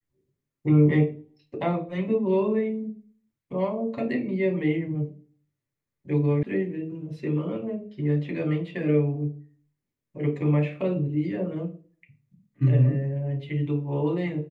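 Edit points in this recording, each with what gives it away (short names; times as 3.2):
6.43 sound cut off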